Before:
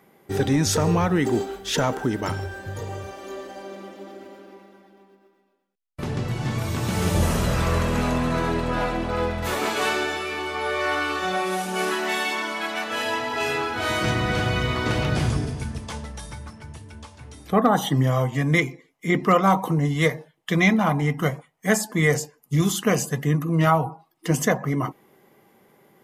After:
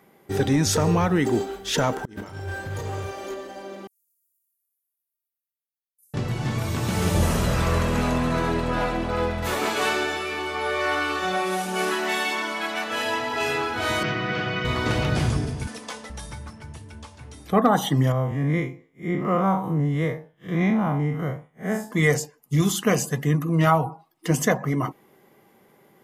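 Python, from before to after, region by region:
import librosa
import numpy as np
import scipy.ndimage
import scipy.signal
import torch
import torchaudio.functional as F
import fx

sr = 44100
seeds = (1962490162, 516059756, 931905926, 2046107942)

y = fx.chain(x, sr, fx.over_compress(threshold_db=-32.0, ratio=-0.5),
    fx.clip_hard(threshold_db=-27.0),
    fx.doubler(ms=33.0, db=-7.5), at=(2.05, 3.34))
y = fx.chain(y, sr, fx.cheby2_highpass(hz=2900.0, order=4, stop_db=70),
    fx.echo_feedback(ms=61, feedback_pct=59, wet_db=-4.5), at=(3.87, 6.14))
y = fx.chain(y, sr, fx.sample_gate(floor_db=-37.0),
    fx.cabinet(low_hz=140.0, low_slope=24, high_hz=4700.0, hz=(250.0, 560.0, 880.0, 3900.0), db=(-9, -5, -7, -7)), at=(14.03, 14.65))
y = fx.chain(y, sr, fx.highpass(hz=360.0, slope=12),
    fx.comb(ms=4.0, depth=0.49),
    fx.band_squash(depth_pct=70), at=(15.67, 16.1))
y = fx.chain(y, sr, fx.spec_blur(span_ms=109.0),
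    fx.peak_eq(hz=6800.0, db=-12.5, octaves=2.7),
    fx.notch(hz=4300.0, q=6.4), at=(18.12, 21.91))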